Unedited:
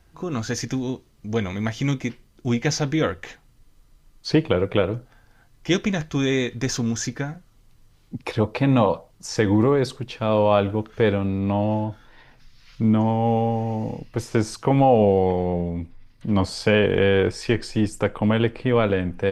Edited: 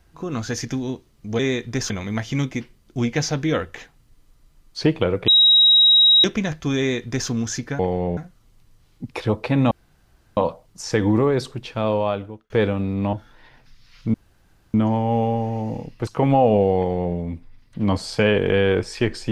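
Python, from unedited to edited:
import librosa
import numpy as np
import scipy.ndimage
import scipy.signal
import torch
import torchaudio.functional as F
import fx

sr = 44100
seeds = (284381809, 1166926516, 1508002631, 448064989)

y = fx.edit(x, sr, fx.bleep(start_s=4.77, length_s=0.96, hz=3820.0, db=-10.0),
    fx.duplicate(start_s=6.27, length_s=0.51, to_s=1.39),
    fx.insert_room_tone(at_s=8.82, length_s=0.66),
    fx.fade_out_span(start_s=10.22, length_s=0.73),
    fx.cut(start_s=11.58, length_s=0.29),
    fx.insert_room_tone(at_s=12.88, length_s=0.6),
    fx.cut(start_s=14.21, length_s=0.34),
    fx.duplicate(start_s=15.25, length_s=0.38, to_s=7.28), tone=tone)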